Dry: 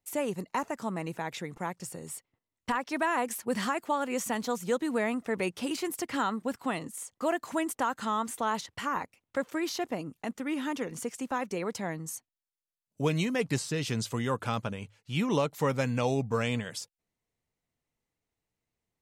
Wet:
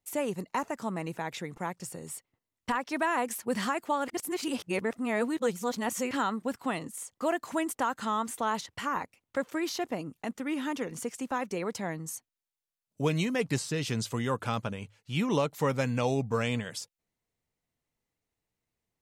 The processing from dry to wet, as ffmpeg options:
-filter_complex "[0:a]asplit=3[s0][s1][s2];[s0]atrim=end=4.082[s3];[s1]atrim=start=4.078:end=6.112,asetpts=PTS-STARTPTS,areverse[s4];[s2]atrim=start=6.108[s5];[s3][s4]acrossfade=d=0.004:c1=hsin:c2=hsin[s6];[s6][s5]acrossfade=d=0.004:c1=hsin:c2=hsin"

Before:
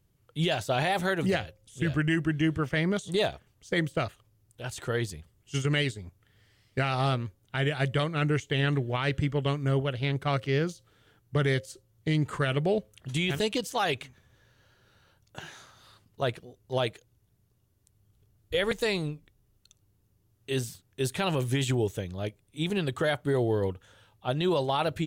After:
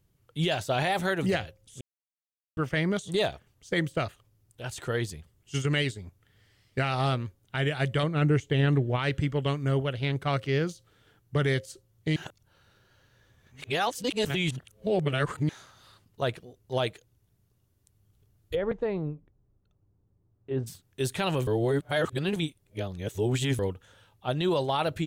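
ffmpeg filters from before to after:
-filter_complex "[0:a]asettb=1/sr,asplit=3[s0][s1][s2];[s0]atrim=end=8.034[s3];[s1]atrim=start=8.03:end=8.99,asetpts=PTS-STARTPTS,afade=t=in:d=0.004:c=qsin,afade=t=out:st=0.956:d=0.004:c=qsin,tiltshelf=f=970:g=4[s4];[s2]atrim=start=8.986[s5];[s3][s4]acrossfade=d=0.004:c1=hsin:c2=qsin[s6];[s6][s5]acrossfade=d=0.004:c1=qsin:c2=hsin,asplit=3[s7][s8][s9];[s7]afade=t=out:st=18.54:d=0.02[s10];[s8]lowpass=1000,afade=t=in:st=18.54:d=0.02,afade=t=out:st=20.66:d=0.02[s11];[s9]afade=t=in:st=20.66:d=0.02[s12];[s10][s11][s12]amix=inputs=3:normalize=0,asplit=7[s13][s14][s15][s16][s17][s18][s19];[s13]atrim=end=1.81,asetpts=PTS-STARTPTS,afade=t=out:st=1.806:d=0.004:c=hsin[s20];[s14]atrim=start=1.81:end=2.57,asetpts=PTS-STARTPTS,volume=0[s21];[s15]atrim=start=2.57:end=12.162,asetpts=PTS-STARTPTS,afade=t=in:d=0.004:c=hsin[s22];[s16]atrim=start=12.158:end=15.492,asetpts=PTS-STARTPTS,areverse[s23];[s17]atrim=start=15.488:end=21.472[s24];[s18]atrim=start=21.468:end=23.592,asetpts=PTS-STARTPTS,areverse[s25];[s19]atrim=start=23.588[s26];[s20][s21][s22]concat=n=3:v=0:a=1[s27];[s27][s23]acrossfade=d=0.004:c1=hsin:c2=hsin[s28];[s28][s24]acrossfade=d=0.004:c1=hsin:c2=hsin[s29];[s29][s25]acrossfade=d=0.004:c1=hsin:c2=hsin[s30];[s30][s26]acrossfade=d=0.004:c1=hsin:c2=hsin"

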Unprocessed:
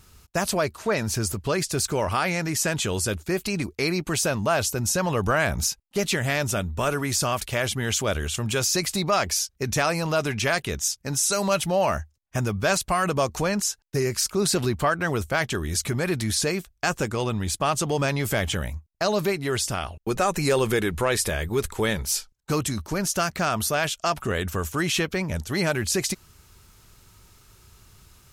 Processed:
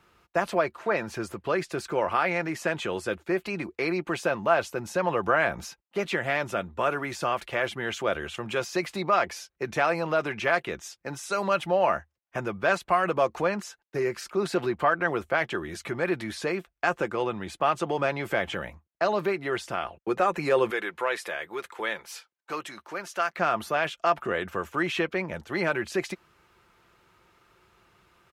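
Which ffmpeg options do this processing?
-filter_complex "[0:a]asettb=1/sr,asplit=3[s0][s1][s2];[s0]atrim=end=20.704[s3];[s1]atrim=start=20.7:end=23.38,asetpts=PTS-STARTPTS,afade=t=in:d=0.004:c=qsin,afade=t=out:st=2.676:d=0.004:c=qsin,highpass=f=900:p=1[s4];[s2]atrim=start=23.376[s5];[s3][s4]acrossfade=d=0.004:c1=hsin:c2=qsin[s6];[s6][s5]acrossfade=d=0.004:c1=qsin:c2=hsin,highpass=49,acrossover=split=280 2900:gain=0.2 1 0.1[s7][s8][s9];[s7][s8][s9]amix=inputs=3:normalize=0,aecho=1:1:5.8:0.34"

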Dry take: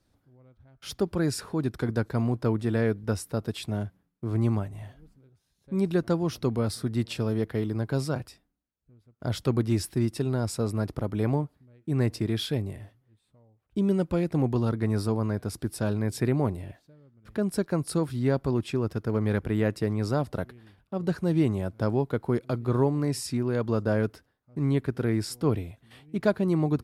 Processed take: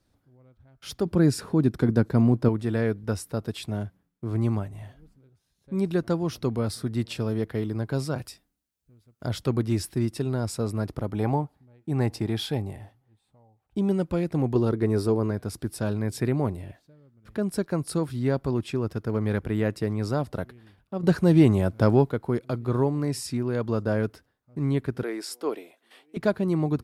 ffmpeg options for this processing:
-filter_complex "[0:a]asettb=1/sr,asplit=3[s0][s1][s2];[s0]atrim=end=1.054[s3];[s1]atrim=start=1.05:end=2.49,asetpts=PTS-STARTPTS,afade=t=in:d=0.004:c=qsin,afade=t=out:st=1.436:d=0.004:c=qsin,equalizer=f=210:t=o:w=2.3:g=8[s4];[s2]atrim=start=2.486[s5];[s3][s4]acrossfade=d=0.004:c1=hsin:c2=qsin[s6];[s6][s5]acrossfade=d=0.004:c1=qsin:c2=hsin,asettb=1/sr,asplit=3[s7][s8][s9];[s7]atrim=end=8.184[s10];[s8]atrim=start=8.18:end=9.27,asetpts=PTS-STARTPTS,afade=t=in:d=0.004:c=qsin,afade=t=out:st=1.086:d=0.004:c=qsin,highshelf=f=3100:g=9[s11];[s9]atrim=start=9.266[s12];[s10][s11]acrossfade=d=0.004:c1=hsin:c2=qsin[s13];[s13][s12]acrossfade=d=0.004:c1=qsin:c2=hsin,asettb=1/sr,asplit=3[s14][s15][s16];[s14]atrim=end=11.134[s17];[s15]atrim=start=11.13:end=13.92,asetpts=PTS-STARTPTS,afade=t=in:d=0.004:c=qsin,afade=t=out:st=2.786:d=0.004:c=qsin,equalizer=f=810:w=4.8:g=12.5[s18];[s16]atrim=start=13.916[s19];[s17][s18]acrossfade=d=0.004:c1=hsin:c2=qsin[s20];[s20][s19]acrossfade=d=0.004:c1=qsin:c2=hsin,asettb=1/sr,asplit=3[s21][s22][s23];[s21]atrim=end=14.554[s24];[s22]atrim=start=14.55:end=15.31,asetpts=PTS-STARTPTS,afade=t=in:d=0.004:c=qsin,afade=t=out:st=0.756:d=0.004:c=qsin,equalizer=f=390:w=2.3:g=9.5[s25];[s23]atrim=start=15.306[s26];[s24][s25]acrossfade=d=0.004:c1=hsin:c2=qsin[s27];[s27][s26]acrossfade=d=0.004:c1=qsin:c2=hsin,asettb=1/sr,asplit=3[s28][s29][s30];[s28]atrim=end=21.034[s31];[s29]atrim=start=21.03:end=22.1,asetpts=PTS-STARTPTS,afade=t=in:d=0.004:c=qsin,afade=t=out:st=1.066:d=0.004:c=qsin,acontrast=77[s32];[s30]atrim=start=22.096[s33];[s31][s32]acrossfade=d=0.004:c1=hsin:c2=qsin[s34];[s34][s33]acrossfade=d=0.004:c1=qsin:c2=hsin,asettb=1/sr,asplit=3[s35][s36][s37];[s35]atrim=end=25.034[s38];[s36]atrim=start=25.03:end=26.17,asetpts=PTS-STARTPTS,afade=t=in:d=0.004:c=qsin,afade=t=out:st=1.136:d=0.004:c=qsin,highpass=f=340:w=0.5412,highpass=f=340:w=1.3066[s39];[s37]atrim=start=26.166[s40];[s38][s39]acrossfade=d=0.004:c1=hsin:c2=qsin[s41];[s41][s40]acrossfade=d=0.004:c1=qsin:c2=hsin"

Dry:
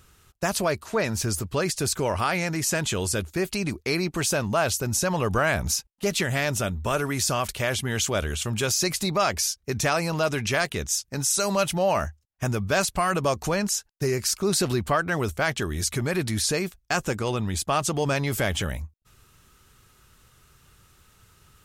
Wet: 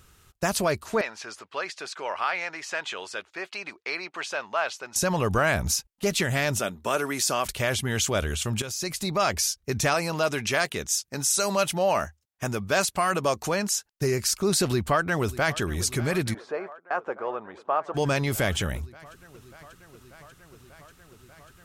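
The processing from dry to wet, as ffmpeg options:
-filter_complex "[0:a]asettb=1/sr,asplit=3[s0][s1][s2];[s0]atrim=end=1.014[s3];[s1]atrim=start=1.01:end=4.96,asetpts=PTS-STARTPTS,afade=t=in:d=0.004:c=qsin,afade=t=out:st=3.946:d=0.004:c=qsin,highpass=780,lowpass=3200[s4];[s2]atrim=start=4.956[s5];[s3][s4]acrossfade=d=0.004:c1=hsin:c2=qsin[s6];[s6][s5]acrossfade=d=0.004:c1=qsin:c2=hsin,asettb=1/sr,asplit=3[s7][s8][s9];[s7]atrim=end=6.594[s10];[s8]atrim=start=6.59:end=7.46,asetpts=PTS-STARTPTS,afade=t=in:d=0.004:c=qsin,afade=t=out:st=0.866:d=0.004:c=qsin,highpass=250[s11];[s9]atrim=start=7.456[s12];[s10][s11]acrossfade=d=0.004:c1=hsin:c2=qsin[s13];[s13][s12]acrossfade=d=0.004:c1=qsin:c2=hsin,asettb=1/sr,asplit=3[s14][s15][s16];[s14]atrim=end=9.944[s17];[s15]atrim=start=9.94:end=13.93,asetpts=PTS-STARTPTS,afade=t=in:d=0.004:c=qsin,afade=t=out:st=3.986:d=0.004:c=qsin,highpass=f=210:p=1[s18];[s16]atrim=start=13.926[s19];[s17][s18]acrossfade=d=0.004:c1=hsin:c2=qsin[s20];[s20][s19]acrossfade=d=0.004:c1=qsin:c2=hsin,asplit=2[s21][s22];[s22]afade=t=in:st=14.62:d=0.01,afade=t=out:st=15.61:d=0.01,aecho=0:1:590|1180|1770|2360|2950|3540|4130|4720|5310|5900|6490|7080:0.133352|0.113349|0.0963469|0.0818949|0.0696107|0.0591691|0.0502937|0.0427496|0.0363372|0.0308866|0.0262536|0.0223156[s23];[s21][s23]amix=inputs=2:normalize=0,asplit=3[s24][s25][s26];[s24]afade=t=out:st=16.33:d=0.02[s27];[s25]asuperpass=centerf=810:order=4:qfactor=0.81,afade=t=in:st=16.33:d=0.02,afade=t=out:st=17.94:d=0.02[s28];[s26]afade=t=in:st=17.94:d=0.02[s29];[s27][s28][s29]amix=inputs=3:normalize=0,asplit=2[s30][s31];[s30]atrim=end=8.62,asetpts=PTS-STARTPTS,afade=t=out:st=8.616:d=0.004:c=hsin:silence=0.251189[s32];[s31]atrim=start=8.62,asetpts=PTS-STARTPTS,afade=t=in:d=0.71:silence=0.251189[s33];[s32][s33]concat=n=2:v=0:a=1"

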